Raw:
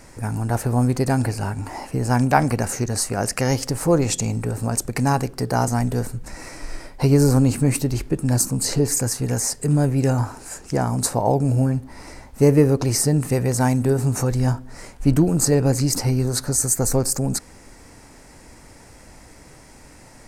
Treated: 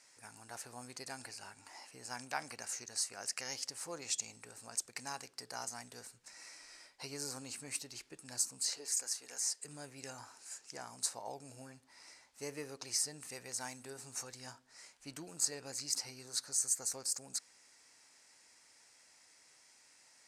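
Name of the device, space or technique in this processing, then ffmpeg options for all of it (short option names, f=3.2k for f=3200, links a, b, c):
piezo pickup straight into a mixer: -filter_complex "[0:a]asettb=1/sr,asplit=3[a][b][c];[a]atrim=end=8.694[d];[b]atrim=start=8.69:end=9.65,asetpts=PTS-STARTPTS,afade=t=in:d=0.004:c=qsin,afade=t=out:st=0.956:d=0.004:c=qsin,highpass=340[e];[c]atrim=start=9.646[f];[d][e]acrossfade=d=0.004:c1=hsin:c2=qsin[g];[g][f]acrossfade=d=0.004:c1=qsin:c2=hsin,lowpass=5.4k,aderivative,volume=-4.5dB"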